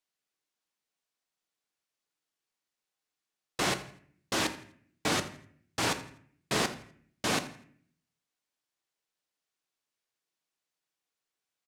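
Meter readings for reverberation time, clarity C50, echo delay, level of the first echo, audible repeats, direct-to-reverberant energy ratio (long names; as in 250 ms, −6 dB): 0.55 s, 12.5 dB, 83 ms, −18.0 dB, 2, 8.0 dB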